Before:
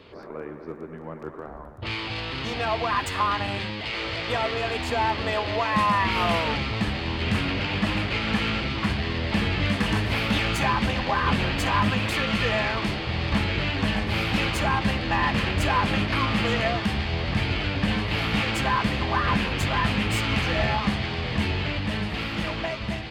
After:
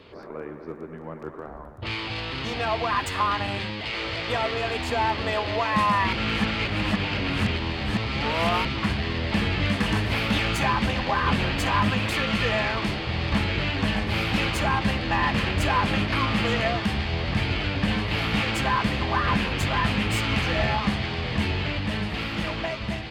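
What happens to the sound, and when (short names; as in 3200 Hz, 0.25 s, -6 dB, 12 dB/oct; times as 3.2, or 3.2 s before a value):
6.13–8.65 reverse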